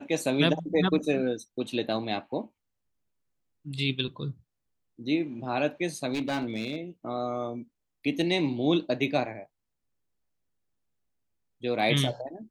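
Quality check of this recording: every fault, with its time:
6.13–6.76 s: clipped -25.5 dBFS

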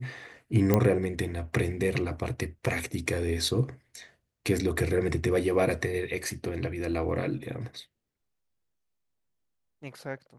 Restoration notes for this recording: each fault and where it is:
0.74 s: pop -9 dBFS

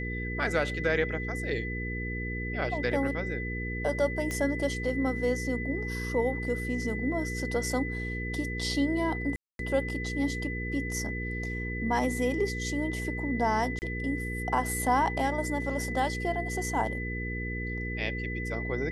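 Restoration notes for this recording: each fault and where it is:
hum 60 Hz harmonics 8 -35 dBFS
whine 2 kHz -36 dBFS
4.31 s: pop -19 dBFS
9.36–9.59 s: dropout 232 ms
13.79–13.82 s: dropout 29 ms

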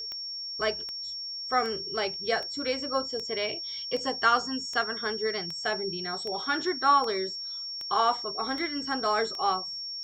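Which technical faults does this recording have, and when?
tick 78 rpm -24 dBFS
whine 5.5 kHz -34 dBFS

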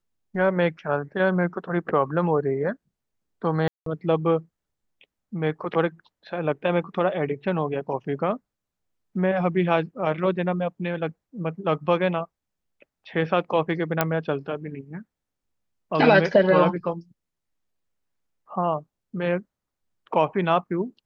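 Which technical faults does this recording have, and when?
3.68–3.86 s: dropout 183 ms
14.01 s: pop -5 dBFS

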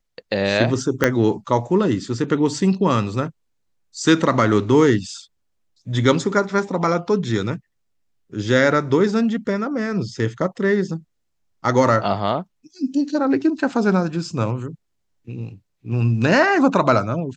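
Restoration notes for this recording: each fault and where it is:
1.04 s: pop -3 dBFS

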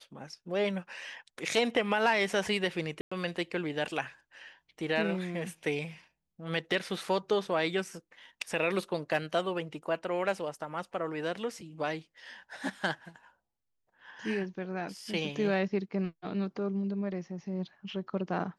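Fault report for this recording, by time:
3.01–3.12 s: dropout 105 ms

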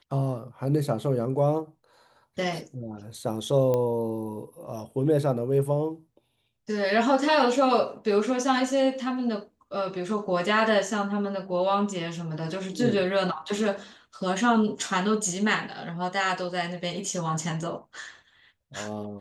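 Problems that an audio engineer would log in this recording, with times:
3.74 s: pop -15 dBFS

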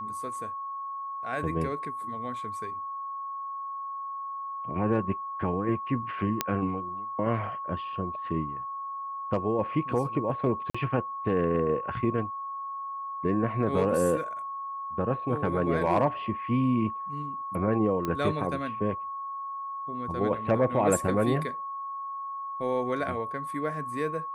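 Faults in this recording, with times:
whine 1.1 kHz -33 dBFS
6.41 s: pop -8 dBFS
10.70–10.74 s: dropout 45 ms
18.05 s: pop -17 dBFS

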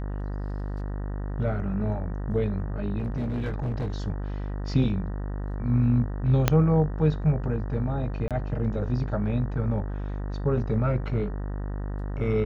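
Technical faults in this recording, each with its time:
buzz 50 Hz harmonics 38 -31 dBFS
2.98–3.90 s: clipped -25 dBFS
6.48 s: pop -5 dBFS
8.28–8.31 s: dropout 27 ms

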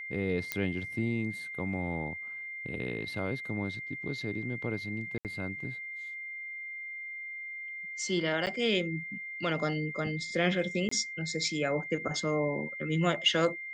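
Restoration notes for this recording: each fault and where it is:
whine 2.1 kHz -38 dBFS
0.52 s: pop -14 dBFS
5.18–5.25 s: dropout 68 ms
8.46–8.47 s: dropout 8.9 ms
10.89–10.91 s: dropout 24 ms

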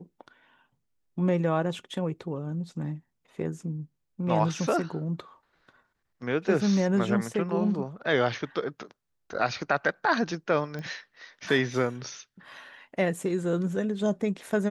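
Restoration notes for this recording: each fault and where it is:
10.79 s: pop -25 dBFS

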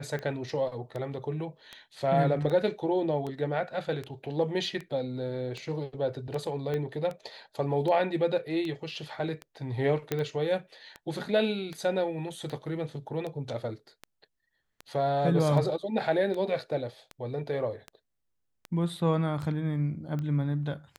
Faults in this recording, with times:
tick 78 rpm -24 dBFS
6.74 s: pop -21 dBFS
10.12 s: pop -14 dBFS

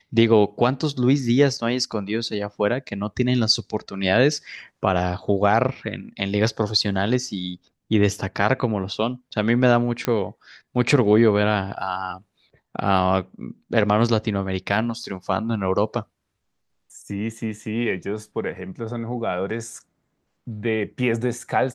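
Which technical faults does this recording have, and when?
10.05 s: pop -8 dBFS

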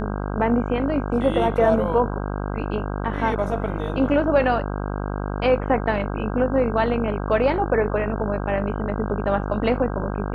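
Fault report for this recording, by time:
buzz 50 Hz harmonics 32 -27 dBFS

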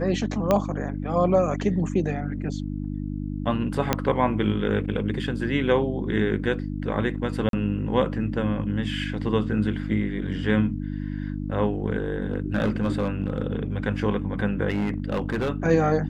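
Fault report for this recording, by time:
hum 50 Hz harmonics 6 -30 dBFS
0.51 s: pop -8 dBFS
3.93 s: pop -5 dBFS
7.49–7.53 s: dropout 42 ms
12.33–13.42 s: clipped -17 dBFS
14.70–15.50 s: clipped -21 dBFS

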